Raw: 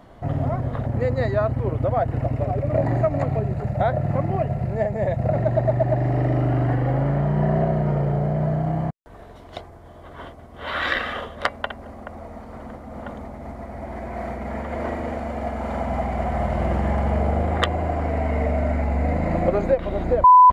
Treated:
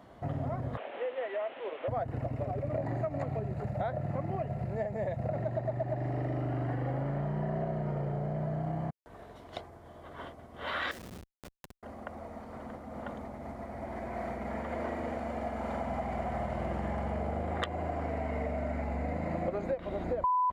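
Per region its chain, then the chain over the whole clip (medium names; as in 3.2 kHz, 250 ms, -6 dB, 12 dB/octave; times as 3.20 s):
0.77–1.88 s: one-bit delta coder 16 kbps, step -32.5 dBFS + high-pass 440 Hz 24 dB/octave + dynamic bell 1.1 kHz, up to -3 dB, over -36 dBFS, Q 0.91
10.91–11.83 s: Schmitt trigger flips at -23.5 dBFS + peaking EQ 1.2 kHz -5 dB 2.9 oct + compression 12:1, threshold -36 dBFS
whole clip: high-pass 98 Hz 6 dB/octave; compression 3:1, threshold -26 dBFS; trim -5.5 dB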